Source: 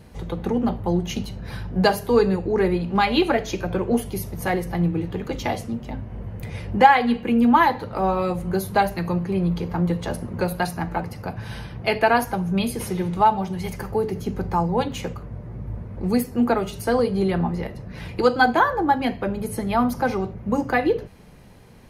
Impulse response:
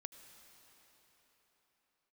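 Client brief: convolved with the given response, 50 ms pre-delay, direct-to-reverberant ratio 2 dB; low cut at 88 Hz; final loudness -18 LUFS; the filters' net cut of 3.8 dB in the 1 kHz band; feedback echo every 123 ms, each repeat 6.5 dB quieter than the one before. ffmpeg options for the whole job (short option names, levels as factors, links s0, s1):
-filter_complex "[0:a]highpass=88,equalizer=f=1000:t=o:g=-5,aecho=1:1:123|246|369|492|615|738:0.473|0.222|0.105|0.0491|0.0231|0.0109,asplit=2[s0][s1];[1:a]atrim=start_sample=2205,adelay=50[s2];[s1][s2]afir=irnorm=-1:irlink=0,volume=1.41[s3];[s0][s3]amix=inputs=2:normalize=0,volume=1.33"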